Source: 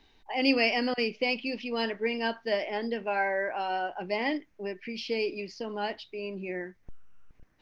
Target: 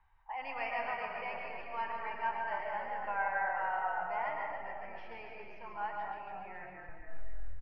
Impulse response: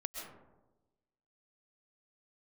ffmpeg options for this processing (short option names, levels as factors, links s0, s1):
-filter_complex "[0:a]firequalizer=gain_entry='entry(110,0);entry(260,-29);entry(920,13);entry(4100,-22)':delay=0.05:min_phase=1,acrossover=split=480|2800[s0][s1][s2];[s0]acontrast=81[s3];[s3][s1][s2]amix=inputs=3:normalize=0,asplit=7[s4][s5][s6][s7][s8][s9][s10];[s5]adelay=278,afreqshift=-43,volume=0.473[s11];[s6]adelay=556,afreqshift=-86,volume=0.243[s12];[s7]adelay=834,afreqshift=-129,volume=0.123[s13];[s8]adelay=1112,afreqshift=-172,volume=0.0631[s14];[s9]adelay=1390,afreqshift=-215,volume=0.032[s15];[s10]adelay=1668,afreqshift=-258,volume=0.0164[s16];[s4][s11][s12][s13][s14][s15][s16]amix=inputs=7:normalize=0[s17];[1:a]atrim=start_sample=2205[s18];[s17][s18]afir=irnorm=-1:irlink=0,volume=0.355"